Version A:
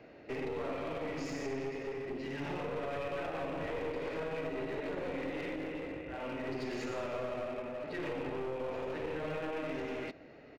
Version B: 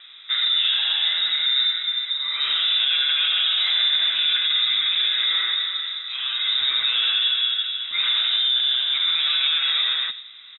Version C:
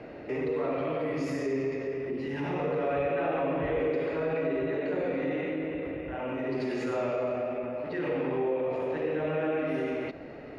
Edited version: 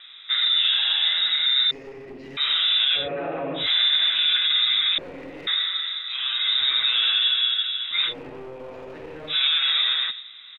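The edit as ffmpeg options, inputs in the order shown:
ffmpeg -i take0.wav -i take1.wav -i take2.wav -filter_complex "[0:a]asplit=3[link_01][link_02][link_03];[1:a]asplit=5[link_04][link_05][link_06][link_07][link_08];[link_04]atrim=end=1.712[link_09];[link_01]atrim=start=1.708:end=2.372[link_10];[link_05]atrim=start=2.368:end=3.09[link_11];[2:a]atrim=start=2.93:end=3.7[link_12];[link_06]atrim=start=3.54:end=4.982[link_13];[link_02]atrim=start=4.978:end=5.472[link_14];[link_07]atrim=start=5.468:end=8.14[link_15];[link_03]atrim=start=8.04:end=9.37[link_16];[link_08]atrim=start=9.27[link_17];[link_09][link_10]acrossfade=duration=0.004:curve1=hsin:curve2=hsin[link_18];[link_18][link_11]acrossfade=duration=0.004:curve1=hsin:curve2=hsin[link_19];[link_19][link_12]acrossfade=duration=0.16:curve1=tri:curve2=tri[link_20];[link_20][link_13]acrossfade=duration=0.16:curve1=tri:curve2=tri[link_21];[link_21][link_14]acrossfade=duration=0.004:curve1=hsin:curve2=hsin[link_22];[link_22][link_15]acrossfade=duration=0.004:curve1=hsin:curve2=hsin[link_23];[link_23][link_16]acrossfade=duration=0.1:curve1=tri:curve2=tri[link_24];[link_24][link_17]acrossfade=duration=0.1:curve1=tri:curve2=tri" out.wav

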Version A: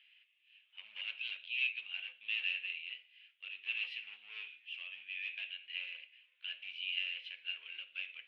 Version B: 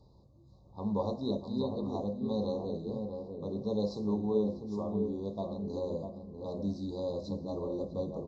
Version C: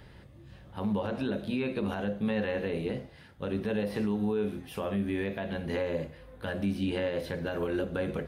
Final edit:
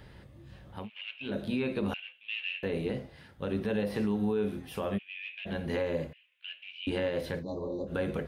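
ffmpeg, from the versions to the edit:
ffmpeg -i take0.wav -i take1.wav -i take2.wav -filter_complex "[0:a]asplit=4[link_01][link_02][link_03][link_04];[2:a]asplit=6[link_05][link_06][link_07][link_08][link_09][link_10];[link_05]atrim=end=0.9[link_11];[link_01]atrim=start=0.74:end=1.36[link_12];[link_06]atrim=start=1.2:end=1.942[link_13];[link_02]atrim=start=1.938:end=2.632[link_14];[link_07]atrim=start=2.628:end=4.99[link_15];[link_03]atrim=start=4.97:end=5.47[link_16];[link_08]atrim=start=5.45:end=6.132[link_17];[link_04]atrim=start=6.128:end=6.872[link_18];[link_09]atrim=start=6.868:end=7.44[link_19];[1:a]atrim=start=7.38:end=7.92[link_20];[link_10]atrim=start=7.86[link_21];[link_11][link_12]acrossfade=duration=0.16:curve1=tri:curve2=tri[link_22];[link_22][link_13]acrossfade=duration=0.16:curve1=tri:curve2=tri[link_23];[link_23][link_14]acrossfade=duration=0.004:curve1=hsin:curve2=hsin[link_24];[link_24][link_15]acrossfade=duration=0.004:curve1=hsin:curve2=hsin[link_25];[link_25][link_16]acrossfade=duration=0.02:curve1=tri:curve2=tri[link_26];[link_26][link_17]acrossfade=duration=0.02:curve1=tri:curve2=tri[link_27];[link_27][link_18]acrossfade=duration=0.004:curve1=hsin:curve2=hsin[link_28];[link_28][link_19]acrossfade=duration=0.004:curve1=hsin:curve2=hsin[link_29];[link_29][link_20]acrossfade=duration=0.06:curve1=tri:curve2=tri[link_30];[link_30][link_21]acrossfade=duration=0.06:curve1=tri:curve2=tri" out.wav

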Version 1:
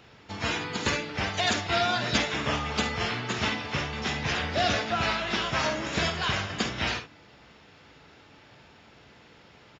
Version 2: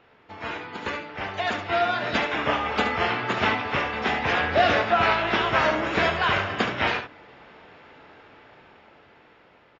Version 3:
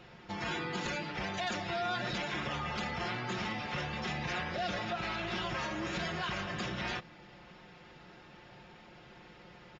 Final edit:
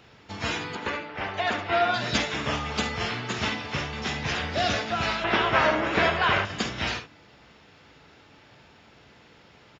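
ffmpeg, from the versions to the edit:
ffmpeg -i take0.wav -i take1.wav -filter_complex "[1:a]asplit=2[link_01][link_02];[0:a]asplit=3[link_03][link_04][link_05];[link_03]atrim=end=0.752[link_06];[link_01]atrim=start=0.748:end=1.942[link_07];[link_04]atrim=start=1.938:end=5.242[link_08];[link_02]atrim=start=5.238:end=6.452[link_09];[link_05]atrim=start=6.448[link_10];[link_06][link_07]acrossfade=duration=0.004:curve1=hsin:curve2=hsin[link_11];[link_11][link_08]acrossfade=duration=0.004:curve1=hsin:curve2=hsin[link_12];[link_12][link_09]acrossfade=duration=0.004:curve1=hsin:curve2=hsin[link_13];[link_13][link_10]acrossfade=duration=0.004:curve1=hsin:curve2=hsin" out.wav

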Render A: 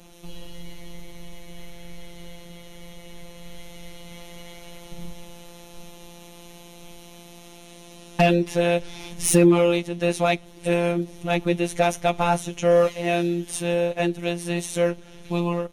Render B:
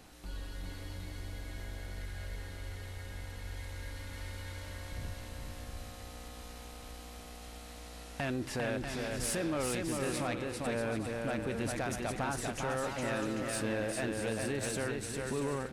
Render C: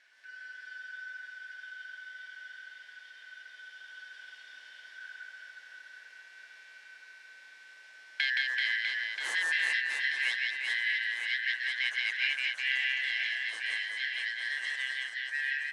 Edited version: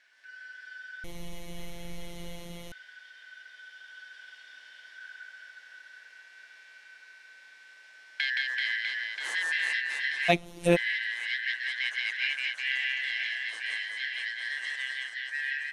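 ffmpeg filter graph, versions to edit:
ffmpeg -i take0.wav -i take1.wav -i take2.wav -filter_complex "[0:a]asplit=2[link_01][link_02];[2:a]asplit=3[link_03][link_04][link_05];[link_03]atrim=end=1.042[link_06];[link_01]atrim=start=1.038:end=2.722[link_07];[link_04]atrim=start=2.718:end=10.3[link_08];[link_02]atrim=start=10.28:end=10.77[link_09];[link_05]atrim=start=10.75[link_10];[link_06][link_07]acrossfade=duration=0.004:curve1=hsin:curve2=hsin[link_11];[link_11][link_08]acrossfade=duration=0.004:curve1=hsin:curve2=hsin[link_12];[link_12][link_09]acrossfade=duration=0.02:curve1=tri:curve2=tri[link_13];[link_13][link_10]acrossfade=duration=0.02:curve1=tri:curve2=tri" out.wav

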